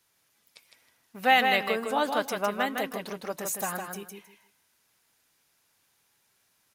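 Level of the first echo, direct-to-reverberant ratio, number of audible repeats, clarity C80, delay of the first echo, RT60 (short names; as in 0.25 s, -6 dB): -5.0 dB, none, 3, none, 0.158 s, none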